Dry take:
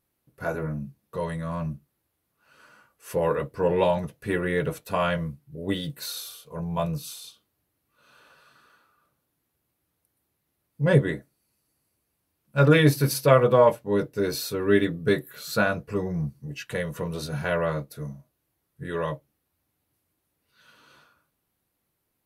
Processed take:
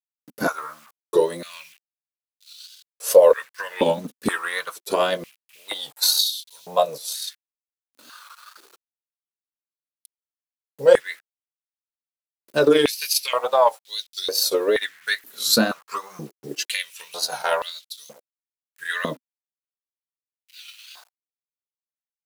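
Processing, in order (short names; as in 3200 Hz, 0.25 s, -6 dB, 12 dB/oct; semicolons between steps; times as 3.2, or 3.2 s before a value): wow and flutter 100 cents; transient shaper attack +7 dB, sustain -10 dB; in parallel at -3 dB: compressor, threshold -24 dBFS, peak gain reduction 15.5 dB; on the sum: limiter -8 dBFS, peak gain reduction 8.5 dB; resonant high shelf 3100 Hz +9.5 dB, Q 1.5; bit-crush 8-bit; stepped high-pass 2.1 Hz 250–3700 Hz; gain -1.5 dB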